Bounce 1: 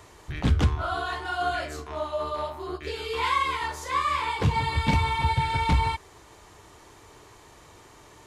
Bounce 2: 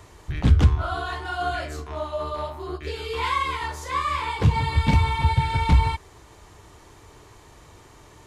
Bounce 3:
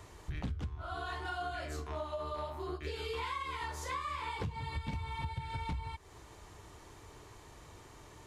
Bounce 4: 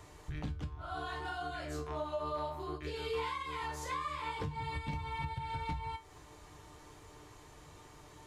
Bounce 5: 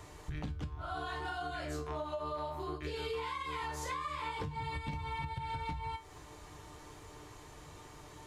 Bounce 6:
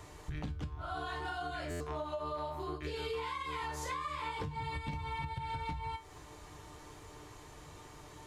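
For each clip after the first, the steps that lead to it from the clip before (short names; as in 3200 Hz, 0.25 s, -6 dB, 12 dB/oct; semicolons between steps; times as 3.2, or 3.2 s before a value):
low shelf 170 Hz +7.5 dB
compressor 12:1, threshold -30 dBFS, peak gain reduction 20 dB; gain -5 dB
resonator 150 Hz, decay 0.24 s, harmonics all, mix 70%; gain +6 dB
compressor, threshold -38 dBFS, peak gain reduction 6 dB; gain +3 dB
stuck buffer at 1.7, samples 512, times 8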